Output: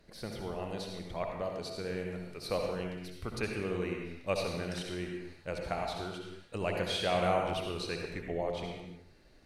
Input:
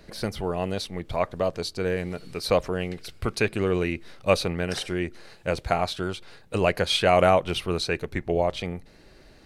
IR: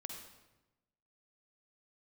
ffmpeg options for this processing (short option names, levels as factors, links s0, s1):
-filter_complex "[1:a]atrim=start_sample=2205,afade=t=out:st=0.33:d=0.01,atrim=end_sample=14994,asetrate=33957,aresample=44100[s0];[0:a][s0]afir=irnorm=-1:irlink=0,volume=0.376"